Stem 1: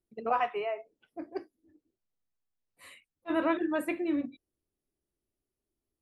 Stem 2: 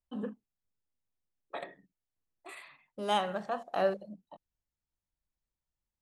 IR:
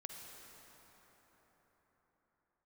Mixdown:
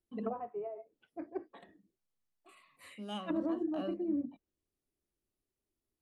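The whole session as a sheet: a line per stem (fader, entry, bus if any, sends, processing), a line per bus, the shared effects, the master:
−2.5 dB, 0.00 s, no send, treble cut that deepens with the level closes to 420 Hz, closed at −29 dBFS
−13.5 dB, 0.00 s, no send, hollow resonant body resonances 220/1,100/2,900 Hz, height 13 dB; phaser whose notches keep moving one way falling 1.5 Hz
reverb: not used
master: no processing

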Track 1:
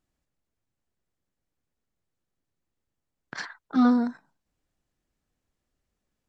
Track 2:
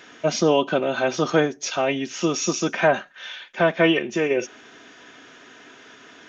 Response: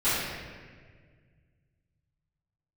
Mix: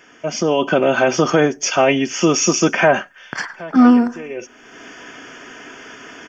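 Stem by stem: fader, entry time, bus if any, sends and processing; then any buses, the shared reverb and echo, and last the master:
+2.0 dB, 0.00 s, no send, echo send −21.5 dB, no processing
−1.5 dB, 0.00 s, no send, no echo send, brickwall limiter −13 dBFS, peak gain reduction 6.5 dB; automatic ducking −16 dB, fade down 0.30 s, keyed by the first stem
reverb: not used
echo: repeating echo 102 ms, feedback 50%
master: Butterworth band-reject 3,900 Hz, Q 3.4; automatic gain control gain up to 11 dB

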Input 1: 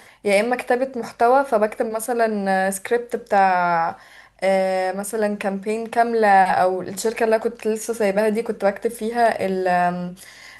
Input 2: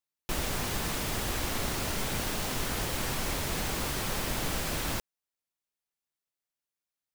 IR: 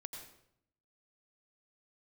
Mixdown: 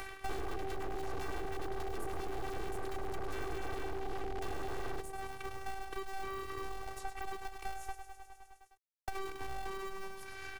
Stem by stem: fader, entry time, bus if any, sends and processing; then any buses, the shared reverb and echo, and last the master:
−15.5 dB, 0.00 s, muted 0:07.95–0:09.08, no send, echo send −9.5 dB, mains-hum notches 50/100/150/200 Hz; downward compressor 2.5 to 1, threshold −31 dBFS, peak gain reduction 13.5 dB; ring modulator with a square carrier 350 Hz
+2.5 dB, 0.00 s, no send, echo send −12 dB, Butterworth low-pass 870 Hz 96 dB per octave; brickwall limiter −27.5 dBFS, peak gain reduction 5.5 dB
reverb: not used
echo: repeating echo 103 ms, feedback 55%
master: phases set to zero 386 Hz; wave folding −30.5 dBFS; multiband upward and downward compressor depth 100%

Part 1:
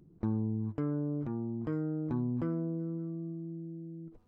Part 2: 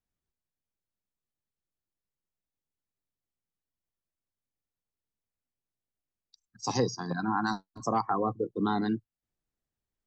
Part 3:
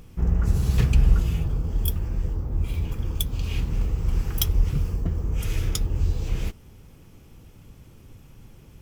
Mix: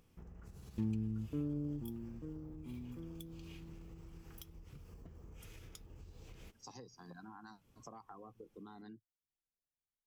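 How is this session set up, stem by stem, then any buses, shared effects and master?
0:01.78 −5.5 dB → 0:02.45 −15.5 dB, 0.55 s, no bus, no send, every bin expanded away from the loudest bin 1.5 to 1
−15.5 dB, 0.00 s, bus A, no send, no processing
−16.5 dB, 0.00 s, bus A, no send, downward compressor, threshold −22 dBFS, peak gain reduction 10.5 dB; low-shelf EQ 140 Hz −10 dB
bus A: 0.0 dB, downward compressor 12 to 1, threshold −49 dBFS, peak gain reduction 12.5 dB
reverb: not used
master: no processing

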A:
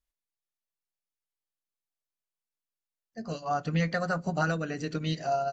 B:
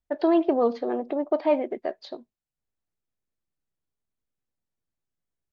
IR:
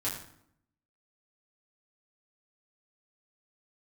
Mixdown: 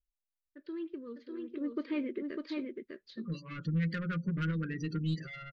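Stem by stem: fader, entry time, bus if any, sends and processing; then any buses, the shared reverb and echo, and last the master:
−0.5 dB, 0.00 s, no send, no echo send, gate on every frequency bin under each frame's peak −20 dB strong; comb filter 5.8 ms, depth 41%; soft clipping −25.5 dBFS, distortion −12 dB
0:01.41 −16.5 dB → 0:01.63 −4 dB, 0.45 s, no send, echo send −3.5 dB, no processing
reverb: not used
echo: single-tap delay 601 ms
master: Butterworth band-reject 750 Hz, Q 0.71; high-shelf EQ 6,700 Hz −8.5 dB

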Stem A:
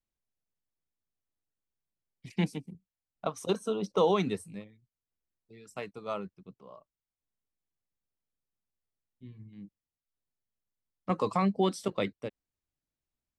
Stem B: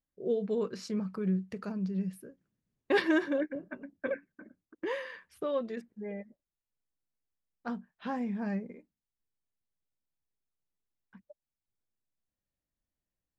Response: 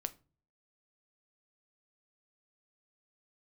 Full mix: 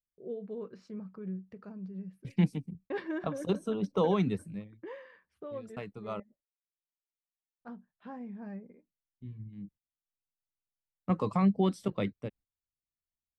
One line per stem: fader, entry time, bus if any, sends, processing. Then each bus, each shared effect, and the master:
−4.0 dB, 0.00 s, muted 0:06.20–0:07.61, no send, bass and treble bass +10 dB, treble −9 dB; noise gate −52 dBFS, range −14 dB; high-shelf EQ 9,500 Hz +9.5 dB
−8.5 dB, 0.00 s, no send, noise gate with hold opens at −57 dBFS; low-pass filter 1,400 Hz 6 dB per octave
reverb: not used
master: no processing

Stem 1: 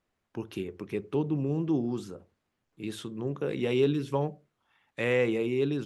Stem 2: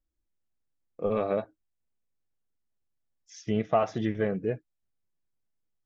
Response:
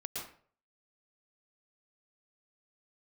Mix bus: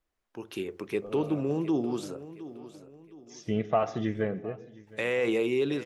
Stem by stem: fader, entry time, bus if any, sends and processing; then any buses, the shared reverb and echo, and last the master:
−5.5 dB, 0.00 s, muted 0:02.60–0:04.87, no send, echo send −15 dB, bass and treble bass −10 dB, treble +2 dB; brickwall limiter −23 dBFS, peak gain reduction 7 dB; automatic gain control gain up to 10 dB
−2.0 dB, 0.00 s, send −16.5 dB, echo send −20.5 dB, automatic ducking −17 dB, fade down 0.75 s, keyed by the first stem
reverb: on, RT60 0.50 s, pre-delay 106 ms
echo: repeating echo 715 ms, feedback 39%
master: no processing

